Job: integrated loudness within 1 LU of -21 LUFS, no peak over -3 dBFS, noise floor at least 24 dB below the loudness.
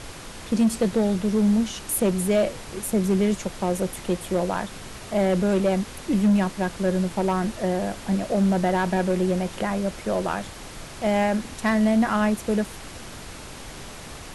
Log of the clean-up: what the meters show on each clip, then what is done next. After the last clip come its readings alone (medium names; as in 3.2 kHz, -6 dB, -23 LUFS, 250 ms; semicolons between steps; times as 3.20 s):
clipped samples 0.9%; clipping level -14.5 dBFS; noise floor -40 dBFS; noise floor target -48 dBFS; loudness -24.0 LUFS; peak level -14.5 dBFS; loudness target -21.0 LUFS
-> clip repair -14.5 dBFS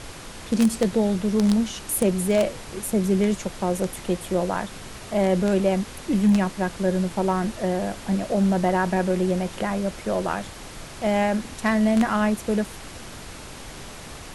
clipped samples 0.0%; noise floor -40 dBFS; noise floor target -48 dBFS
-> noise print and reduce 8 dB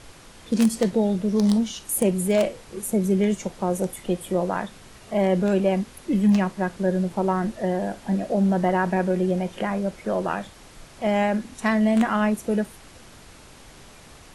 noise floor -48 dBFS; loudness -23.5 LUFS; peak level -6.0 dBFS; loudness target -21.0 LUFS
-> trim +2.5 dB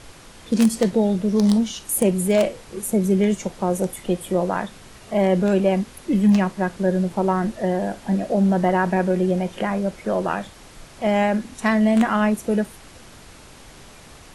loudness -21.0 LUFS; peak level -3.5 dBFS; noise floor -45 dBFS